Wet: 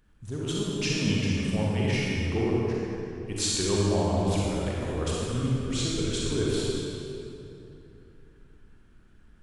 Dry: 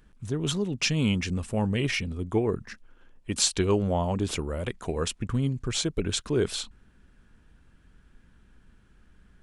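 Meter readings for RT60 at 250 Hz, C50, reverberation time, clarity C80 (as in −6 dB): 3.5 s, −4.0 dB, 2.9 s, −2.0 dB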